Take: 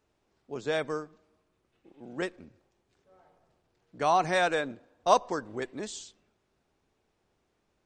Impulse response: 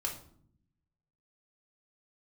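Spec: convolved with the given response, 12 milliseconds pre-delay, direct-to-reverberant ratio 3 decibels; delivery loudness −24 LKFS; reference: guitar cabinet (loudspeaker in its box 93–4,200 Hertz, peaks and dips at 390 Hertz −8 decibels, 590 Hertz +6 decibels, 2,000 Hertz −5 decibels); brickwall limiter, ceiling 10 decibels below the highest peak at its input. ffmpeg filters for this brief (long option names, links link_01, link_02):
-filter_complex "[0:a]alimiter=limit=-19dB:level=0:latency=1,asplit=2[link_01][link_02];[1:a]atrim=start_sample=2205,adelay=12[link_03];[link_02][link_03]afir=irnorm=-1:irlink=0,volume=-5dB[link_04];[link_01][link_04]amix=inputs=2:normalize=0,highpass=93,equalizer=frequency=390:width_type=q:width=4:gain=-8,equalizer=frequency=590:width_type=q:width=4:gain=6,equalizer=frequency=2000:width_type=q:width=4:gain=-5,lowpass=frequency=4200:width=0.5412,lowpass=frequency=4200:width=1.3066,volume=7dB"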